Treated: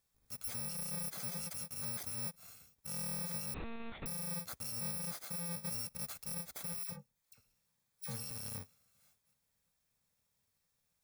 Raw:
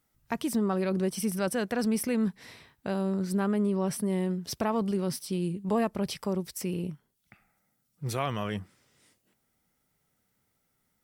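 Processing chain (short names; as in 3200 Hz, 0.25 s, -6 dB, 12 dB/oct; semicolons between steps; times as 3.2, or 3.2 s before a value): FFT order left unsorted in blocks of 128 samples; notch 2900 Hz, Q 7.8; 3.54–4.06 monotone LPC vocoder at 8 kHz 230 Hz; limiter -28 dBFS, peak gain reduction 10.5 dB; 6.83–8.31 dispersion lows, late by 61 ms, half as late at 1600 Hz; gain -6 dB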